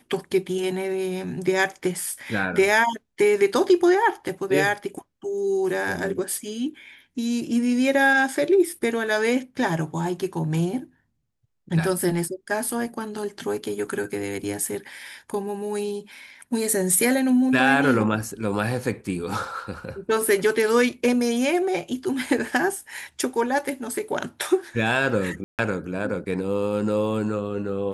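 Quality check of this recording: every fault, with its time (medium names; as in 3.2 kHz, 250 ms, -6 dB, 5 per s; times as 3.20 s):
25.44–25.59 s: dropout 148 ms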